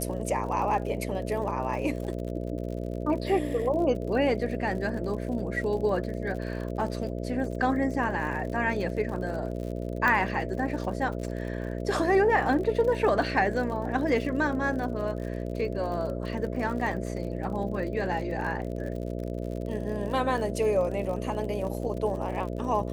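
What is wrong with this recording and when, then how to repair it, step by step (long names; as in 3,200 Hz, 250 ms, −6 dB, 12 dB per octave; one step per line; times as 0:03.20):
mains buzz 60 Hz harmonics 11 −33 dBFS
surface crackle 57 per second −36 dBFS
0:10.08: click −13 dBFS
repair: click removal
hum removal 60 Hz, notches 11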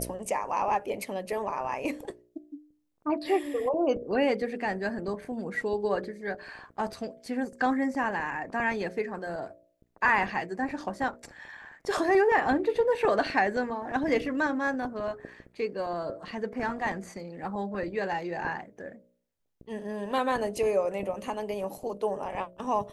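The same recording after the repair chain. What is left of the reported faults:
none of them is left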